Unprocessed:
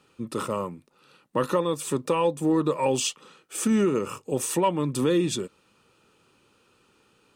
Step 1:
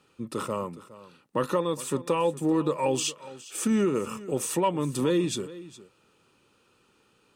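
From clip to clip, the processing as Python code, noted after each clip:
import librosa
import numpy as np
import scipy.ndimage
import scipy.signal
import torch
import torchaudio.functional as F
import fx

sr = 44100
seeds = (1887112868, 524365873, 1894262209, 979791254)

y = x + 10.0 ** (-17.5 / 20.0) * np.pad(x, (int(413 * sr / 1000.0), 0))[:len(x)]
y = F.gain(torch.from_numpy(y), -2.0).numpy()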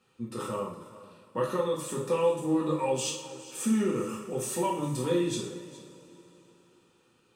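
y = fx.rev_double_slope(x, sr, seeds[0], early_s=0.52, late_s=3.7, knee_db=-20, drr_db=-4.0)
y = F.gain(torch.from_numpy(y), -8.5).numpy()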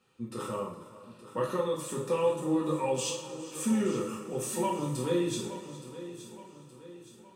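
y = fx.echo_feedback(x, sr, ms=870, feedback_pct=47, wet_db=-14)
y = F.gain(torch.from_numpy(y), -1.5).numpy()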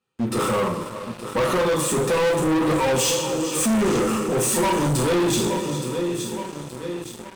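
y = fx.leveller(x, sr, passes=5)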